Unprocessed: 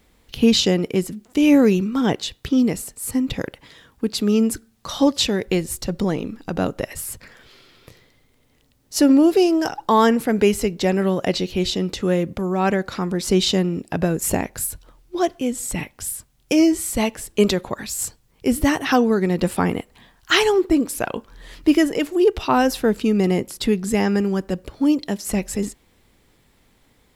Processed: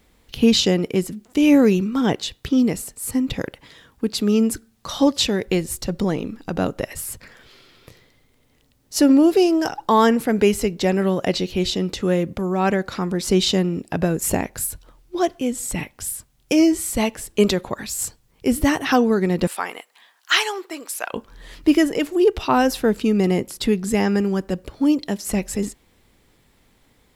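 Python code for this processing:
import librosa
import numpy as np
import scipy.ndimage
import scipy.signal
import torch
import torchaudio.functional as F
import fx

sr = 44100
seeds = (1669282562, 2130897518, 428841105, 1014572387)

y = fx.highpass(x, sr, hz=860.0, slope=12, at=(19.47, 21.13))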